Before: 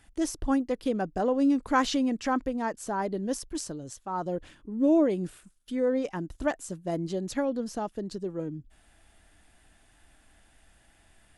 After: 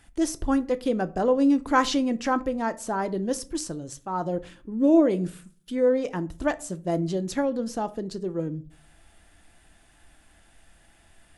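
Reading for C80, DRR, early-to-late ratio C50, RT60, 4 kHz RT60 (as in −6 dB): 25.0 dB, 11.5 dB, 20.0 dB, 0.45 s, 0.25 s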